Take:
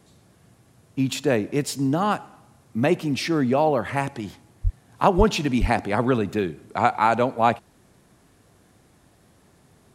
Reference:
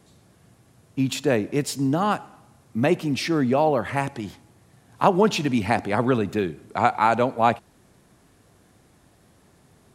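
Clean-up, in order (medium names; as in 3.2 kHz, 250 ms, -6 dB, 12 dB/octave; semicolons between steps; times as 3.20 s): 4.63–4.75 s: high-pass 140 Hz 24 dB/octave; 5.17–5.29 s: high-pass 140 Hz 24 dB/octave; 5.60–5.72 s: high-pass 140 Hz 24 dB/octave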